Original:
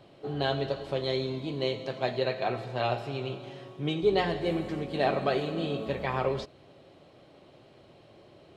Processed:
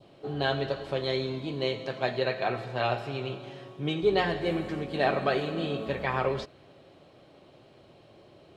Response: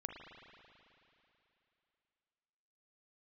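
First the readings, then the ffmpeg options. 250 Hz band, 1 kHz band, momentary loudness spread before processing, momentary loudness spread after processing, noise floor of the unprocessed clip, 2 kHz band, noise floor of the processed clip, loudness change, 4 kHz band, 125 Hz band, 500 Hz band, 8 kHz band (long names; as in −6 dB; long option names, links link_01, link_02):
0.0 dB, +1.0 dB, 9 LU, 9 LU, −56 dBFS, +3.5 dB, −56 dBFS, +0.5 dB, +1.0 dB, 0.0 dB, +0.5 dB, can't be measured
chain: -af "bandreject=frequency=2000:width=29,adynamicequalizer=threshold=0.00562:dfrequency=1700:dqfactor=1.3:tfrequency=1700:tqfactor=1.3:attack=5:release=100:ratio=0.375:range=2.5:mode=boostabove:tftype=bell"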